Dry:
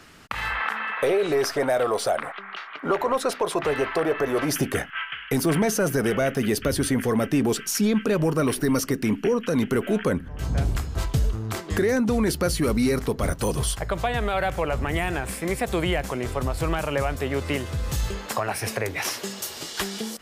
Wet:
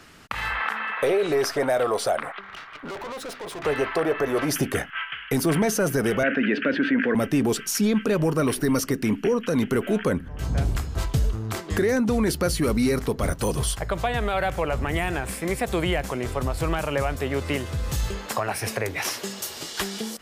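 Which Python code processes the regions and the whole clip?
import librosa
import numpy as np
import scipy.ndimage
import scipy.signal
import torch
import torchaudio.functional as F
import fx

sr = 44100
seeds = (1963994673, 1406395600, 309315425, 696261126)

y = fx.chain(x, sr, fx.median_filter(points=3),
    fx.tube_stage(drive_db=32.0, bias=0.55), at=(2.41, 3.64))
y = fx.chain(y, sr, fx.cabinet(low_hz=220.0, low_slope=24, high_hz=2700.0, hz=(270.0, 390.0, 780.0, 1100.0, 1600.0, 2600.0), db=(4, -7, -10, -8, 9, 5)),
    fx.env_flatten(amount_pct=50), at=(6.23, 7.15))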